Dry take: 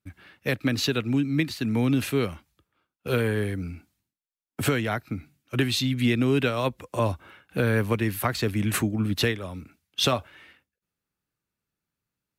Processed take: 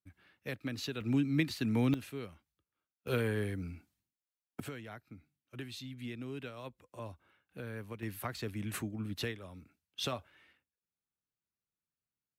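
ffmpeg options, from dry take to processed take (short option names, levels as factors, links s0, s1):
-af "asetnsamples=n=441:p=0,asendcmd='1.01 volume volume -6dB;1.94 volume volume -17.5dB;3.07 volume volume -8dB;4.6 volume volume -20dB;8.03 volume volume -13.5dB',volume=0.2"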